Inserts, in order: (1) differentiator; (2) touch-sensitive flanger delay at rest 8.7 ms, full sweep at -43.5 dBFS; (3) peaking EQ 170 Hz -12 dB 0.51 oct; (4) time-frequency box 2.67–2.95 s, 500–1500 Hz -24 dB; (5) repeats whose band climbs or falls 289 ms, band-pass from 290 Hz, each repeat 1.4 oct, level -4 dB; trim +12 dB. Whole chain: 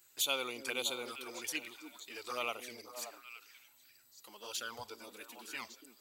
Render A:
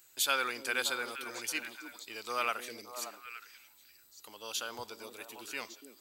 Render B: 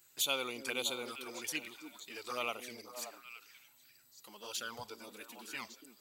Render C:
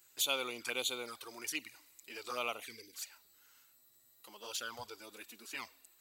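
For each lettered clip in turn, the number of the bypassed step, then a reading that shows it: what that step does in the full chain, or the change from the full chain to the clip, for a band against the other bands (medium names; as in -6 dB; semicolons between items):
2, 1 kHz band +5.0 dB; 3, 125 Hz band +3.5 dB; 5, echo-to-direct -9.5 dB to none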